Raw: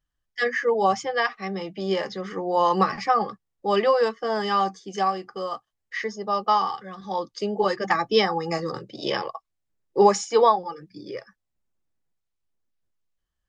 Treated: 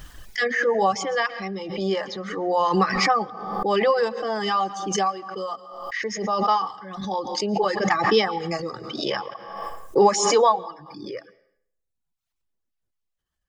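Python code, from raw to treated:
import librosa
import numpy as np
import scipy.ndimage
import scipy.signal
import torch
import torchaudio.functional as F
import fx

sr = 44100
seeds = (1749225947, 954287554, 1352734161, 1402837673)

y = fx.dereverb_blind(x, sr, rt60_s=0.95)
y = fx.rev_plate(y, sr, seeds[0], rt60_s=0.66, hf_ratio=0.9, predelay_ms=105, drr_db=20.0)
y = fx.pre_swell(y, sr, db_per_s=47.0)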